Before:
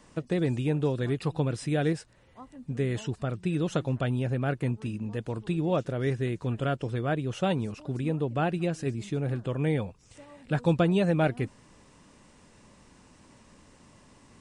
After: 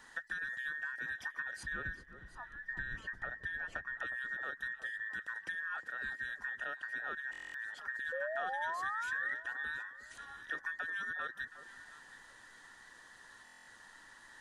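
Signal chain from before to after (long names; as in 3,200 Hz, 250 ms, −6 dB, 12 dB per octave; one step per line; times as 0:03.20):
frequency inversion band by band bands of 2,000 Hz
0:01.63–0:03.97: RIAA equalisation playback
downward compressor 6 to 1, threshold −37 dBFS, peak gain reduction 17.5 dB
0:08.12–0:09.34: sound drawn into the spectrogram rise 510–2,000 Hz −38 dBFS
delay that swaps between a low-pass and a high-pass 360 ms, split 1,200 Hz, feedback 50%, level −10.5 dB
buffer that repeats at 0:07.31/0:13.44, samples 1,024, times 9
level −1.5 dB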